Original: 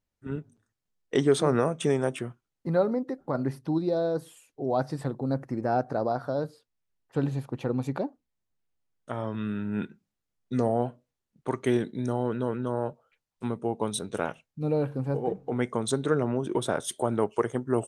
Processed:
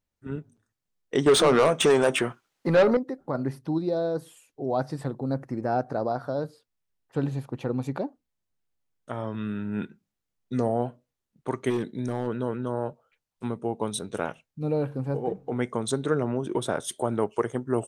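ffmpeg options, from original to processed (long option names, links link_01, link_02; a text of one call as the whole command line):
ffmpeg -i in.wav -filter_complex "[0:a]asettb=1/sr,asplit=3[link_01][link_02][link_03];[link_01]atrim=end=1.264[link_04];[link_02]atrim=start=1.26:end=2.97,asetpts=PTS-STARTPTS,afade=type=in:duration=0.004:curve=qsin,afade=type=out:start_time=1.706:duration=0.004:curve=qsin,asplit=2[link_05][link_06];[link_06]highpass=frequency=720:poles=1,volume=22dB,asoftclip=type=tanh:threshold=-10dB[link_07];[link_05][link_07]amix=inputs=2:normalize=0,lowpass=frequency=5400:poles=1,volume=-6dB[link_08];[link_03]atrim=start=2.966[link_09];[link_04][link_08]acrossfade=duration=0.004:curve1=hsin:curve2=qsin[link_10];[link_10][link_09]acrossfade=duration=0.004:curve1=qsin:curve2=hsin,asplit=3[link_11][link_12][link_13];[link_11]afade=type=out:start_time=11.69:duration=0.02[link_14];[link_12]volume=22dB,asoftclip=hard,volume=-22dB,afade=type=in:start_time=11.69:duration=0.02,afade=type=out:start_time=12.26:duration=0.02[link_15];[link_13]afade=type=in:start_time=12.26:duration=0.02[link_16];[link_14][link_15][link_16]amix=inputs=3:normalize=0" out.wav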